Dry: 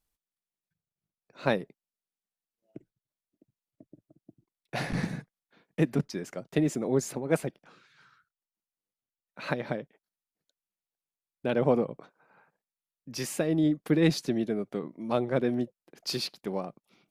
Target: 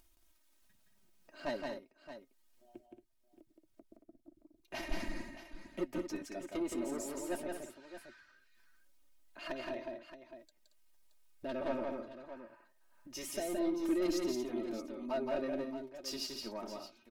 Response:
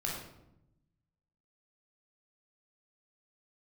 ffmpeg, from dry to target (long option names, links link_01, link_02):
-af "asubboost=boost=5:cutoff=63,asoftclip=type=tanh:threshold=-23dB,flanger=delay=3.1:depth=6.5:regen=53:speed=0.21:shape=sinusoidal,aecho=1:1:3.5:0.83,acompressor=mode=upward:threshold=-47dB:ratio=2.5,asetrate=48091,aresample=44100,atempo=0.917004,aecho=1:1:170|227|623:0.668|0.316|0.251,volume=-5.5dB"